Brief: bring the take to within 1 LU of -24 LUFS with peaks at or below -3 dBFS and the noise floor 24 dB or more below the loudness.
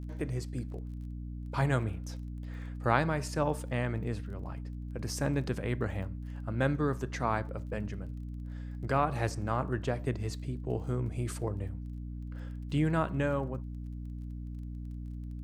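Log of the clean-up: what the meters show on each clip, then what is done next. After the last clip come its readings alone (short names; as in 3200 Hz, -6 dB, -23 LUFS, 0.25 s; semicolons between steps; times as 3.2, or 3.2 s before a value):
ticks 25/s; hum 60 Hz; harmonics up to 300 Hz; hum level -37 dBFS; loudness -34.5 LUFS; peak -10.0 dBFS; loudness target -24.0 LUFS
-> de-click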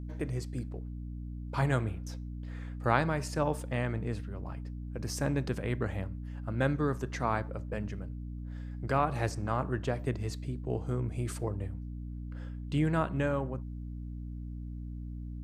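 ticks 0.065/s; hum 60 Hz; harmonics up to 300 Hz; hum level -37 dBFS
-> notches 60/120/180/240/300 Hz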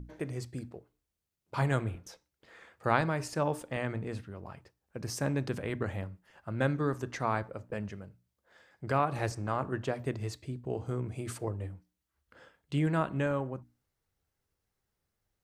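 hum none; loudness -34.0 LUFS; peak -10.5 dBFS; loudness target -24.0 LUFS
-> gain +10 dB; limiter -3 dBFS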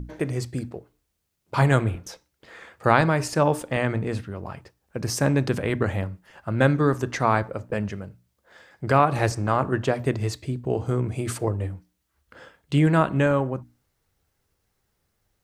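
loudness -24.0 LUFS; peak -3.0 dBFS; noise floor -75 dBFS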